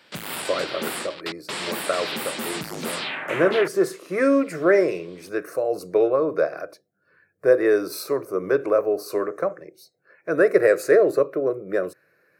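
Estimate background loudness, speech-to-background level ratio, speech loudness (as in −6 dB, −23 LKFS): −29.5 LKFS, 7.0 dB, −22.5 LKFS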